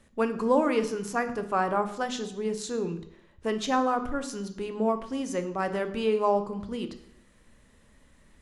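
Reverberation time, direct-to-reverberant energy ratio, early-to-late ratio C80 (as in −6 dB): 0.70 s, 8.5 dB, 15.0 dB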